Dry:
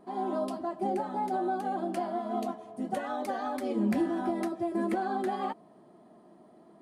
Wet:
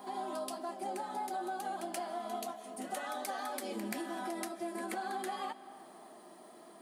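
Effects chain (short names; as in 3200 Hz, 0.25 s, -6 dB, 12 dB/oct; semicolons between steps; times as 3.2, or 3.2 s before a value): HPF 150 Hz; tilt +4 dB/oct; compressor 2:1, threshold -50 dBFS, peak gain reduction 11.5 dB; reverse echo 0.13 s -10 dB; on a send at -15 dB: reverb RT60 3.0 s, pre-delay 0.115 s; on the sum: gain +5 dB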